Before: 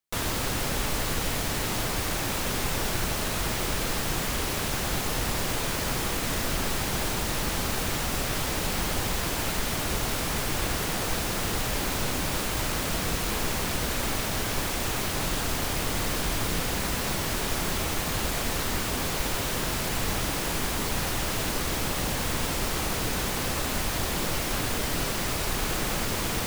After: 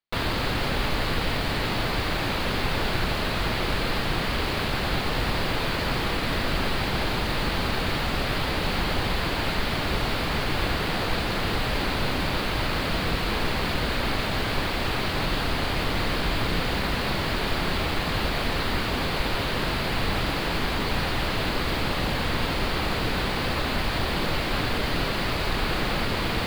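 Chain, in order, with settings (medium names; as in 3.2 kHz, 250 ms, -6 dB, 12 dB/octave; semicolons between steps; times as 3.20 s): elliptic low-pass 4.6 kHz, stop band 40 dB; in parallel at -4 dB: word length cut 6-bit, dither none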